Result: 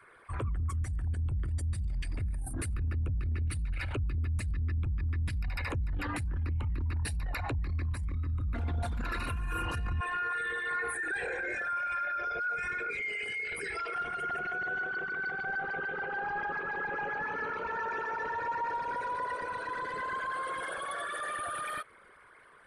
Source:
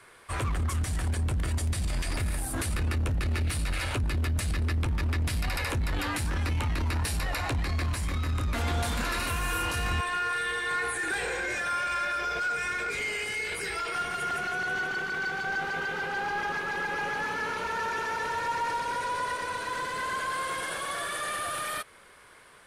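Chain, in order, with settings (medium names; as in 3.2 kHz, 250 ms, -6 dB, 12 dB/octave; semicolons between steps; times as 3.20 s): resonances exaggerated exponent 2; trim -3.5 dB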